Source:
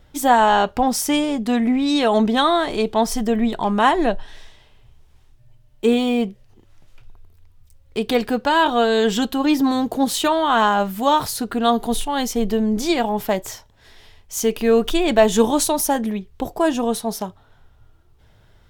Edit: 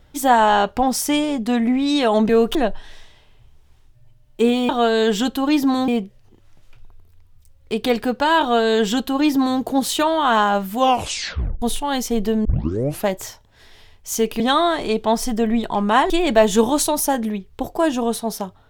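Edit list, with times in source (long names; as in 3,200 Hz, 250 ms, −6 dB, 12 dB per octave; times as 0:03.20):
0:02.29–0:03.99: swap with 0:14.65–0:14.91
0:08.66–0:09.85: duplicate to 0:06.13
0:11.02: tape stop 0.85 s
0:12.70: tape start 0.62 s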